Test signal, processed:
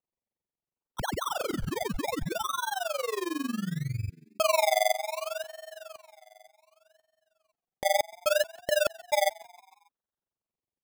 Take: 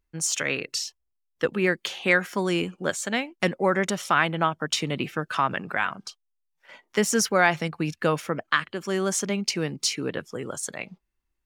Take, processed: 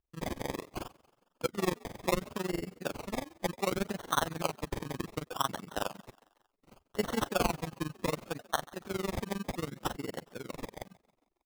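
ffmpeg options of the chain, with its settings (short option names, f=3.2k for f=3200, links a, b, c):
-filter_complex "[0:a]acrusher=samples=25:mix=1:aa=0.000001:lfo=1:lforange=15:lforate=0.67,asplit=5[a][b][c][d][e];[b]adelay=148,afreqshift=55,volume=-23dB[f];[c]adelay=296,afreqshift=110,volume=-28.5dB[g];[d]adelay=444,afreqshift=165,volume=-34dB[h];[e]adelay=592,afreqshift=220,volume=-39.5dB[i];[a][f][g][h][i]amix=inputs=5:normalize=0,tremolo=f=22:d=0.947,volume=-5.5dB"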